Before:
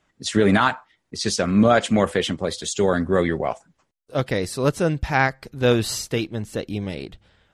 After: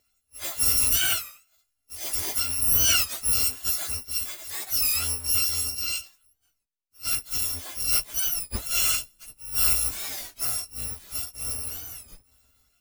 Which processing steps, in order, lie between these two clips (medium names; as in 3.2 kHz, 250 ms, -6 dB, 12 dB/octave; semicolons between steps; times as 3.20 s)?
bit-reversed sample order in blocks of 256 samples; plain phase-vocoder stretch 1.7×; warped record 33 1/3 rpm, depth 160 cents; trim -2.5 dB